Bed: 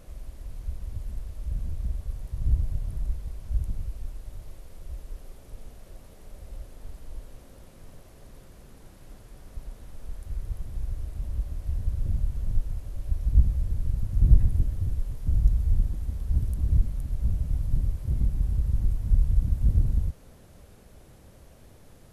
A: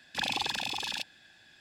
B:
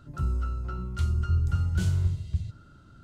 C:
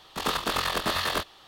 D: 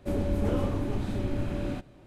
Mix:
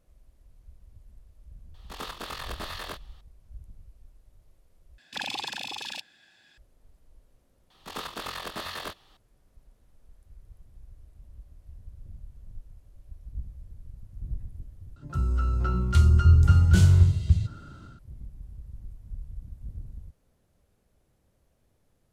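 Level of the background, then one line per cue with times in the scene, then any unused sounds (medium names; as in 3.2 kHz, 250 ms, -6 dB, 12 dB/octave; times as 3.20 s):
bed -17.5 dB
1.74 s: add C -10.5 dB
4.98 s: replace with A -2 dB + bass shelf 81 Hz -10 dB
7.70 s: add C -9 dB
14.96 s: replace with B + level rider gain up to 8 dB
not used: D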